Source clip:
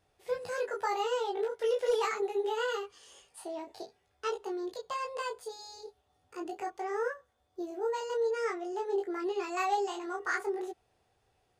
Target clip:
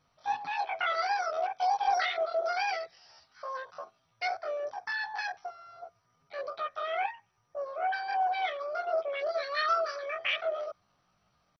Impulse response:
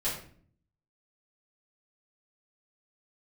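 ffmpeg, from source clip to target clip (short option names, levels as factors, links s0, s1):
-af "asetrate=72056,aresample=44100,atempo=0.612027,volume=1.19" -ar 24000 -c:a mp2 -b:a 32k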